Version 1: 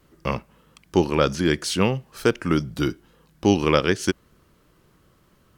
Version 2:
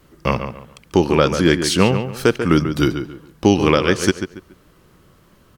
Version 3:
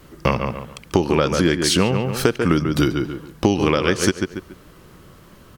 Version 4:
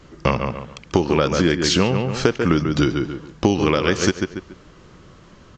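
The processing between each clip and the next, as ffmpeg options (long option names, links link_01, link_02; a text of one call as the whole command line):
ffmpeg -i in.wav -filter_complex "[0:a]alimiter=limit=-8dB:level=0:latency=1:release=312,asplit=2[link_01][link_02];[link_02]adelay=141,lowpass=frequency=3100:poles=1,volume=-8.5dB,asplit=2[link_03][link_04];[link_04]adelay=141,lowpass=frequency=3100:poles=1,volume=0.29,asplit=2[link_05][link_06];[link_06]adelay=141,lowpass=frequency=3100:poles=1,volume=0.29[link_07];[link_01][link_03][link_05][link_07]amix=inputs=4:normalize=0,volume=6.5dB" out.wav
ffmpeg -i in.wav -af "acompressor=threshold=-20dB:ratio=6,volume=6dB" out.wav
ffmpeg -i in.wav -af "aresample=16000,aresample=44100" -ar 22050 -c:a aac -b:a 48k out.aac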